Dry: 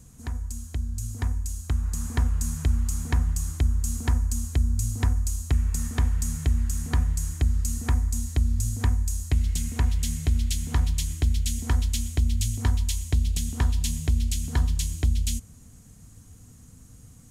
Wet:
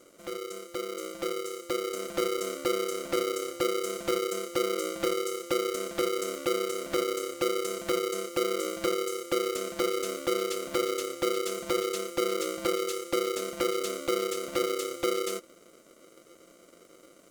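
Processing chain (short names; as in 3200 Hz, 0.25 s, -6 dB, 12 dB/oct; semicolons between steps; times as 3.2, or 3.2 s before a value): polarity switched at an audio rate 430 Hz; gain -7 dB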